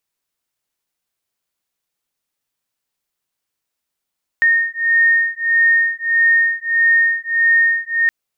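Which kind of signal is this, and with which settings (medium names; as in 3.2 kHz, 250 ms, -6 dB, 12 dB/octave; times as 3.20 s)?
beating tones 1.84 kHz, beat 1.6 Hz, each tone -15 dBFS 3.67 s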